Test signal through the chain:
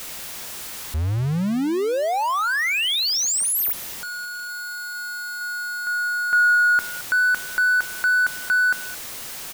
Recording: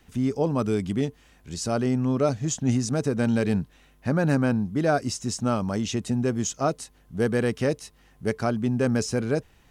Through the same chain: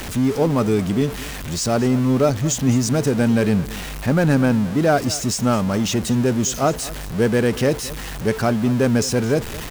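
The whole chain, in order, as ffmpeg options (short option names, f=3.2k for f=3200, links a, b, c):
-af "aeval=exprs='val(0)+0.5*0.0335*sgn(val(0))':c=same,aecho=1:1:219:0.126,volume=4.5dB"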